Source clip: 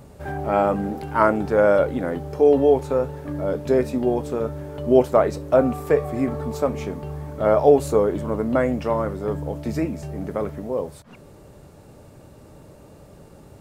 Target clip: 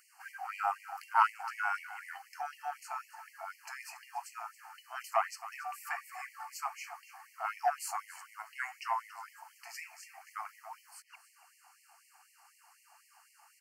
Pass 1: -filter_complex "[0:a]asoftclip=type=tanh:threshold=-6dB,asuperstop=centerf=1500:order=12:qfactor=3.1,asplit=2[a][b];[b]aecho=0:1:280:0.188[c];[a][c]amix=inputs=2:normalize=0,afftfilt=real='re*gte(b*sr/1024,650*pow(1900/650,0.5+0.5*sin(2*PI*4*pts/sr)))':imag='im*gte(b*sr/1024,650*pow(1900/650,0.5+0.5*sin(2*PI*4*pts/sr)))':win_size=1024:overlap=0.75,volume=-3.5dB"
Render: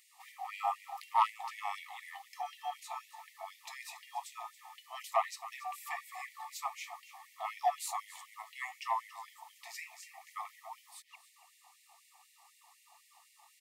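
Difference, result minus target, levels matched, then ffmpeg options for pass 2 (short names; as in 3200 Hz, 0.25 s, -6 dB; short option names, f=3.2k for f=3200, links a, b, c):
4000 Hz band +5.0 dB
-filter_complex "[0:a]asoftclip=type=tanh:threshold=-6dB,asuperstop=centerf=3600:order=12:qfactor=3.1,asplit=2[a][b];[b]aecho=0:1:280:0.188[c];[a][c]amix=inputs=2:normalize=0,afftfilt=real='re*gte(b*sr/1024,650*pow(1900/650,0.5+0.5*sin(2*PI*4*pts/sr)))':imag='im*gte(b*sr/1024,650*pow(1900/650,0.5+0.5*sin(2*PI*4*pts/sr)))':win_size=1024:overlap=0.75,volume=-3.5dB"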